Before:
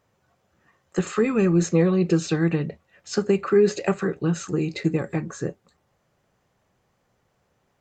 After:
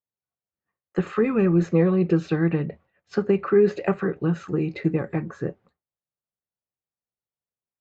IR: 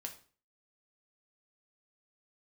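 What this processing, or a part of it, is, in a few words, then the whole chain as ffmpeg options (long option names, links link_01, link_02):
hearing-loss simulation: -af "lowpass=2400,agate=range=-33dB:threshold=-47dB:ratio=3:detection=peak"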